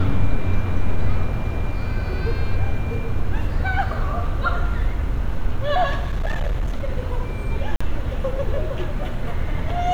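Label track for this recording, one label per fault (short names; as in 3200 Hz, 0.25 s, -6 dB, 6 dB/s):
5.980000	6.890000	clipped -18 dBFS
7.760000	7.800000	gap 45 ms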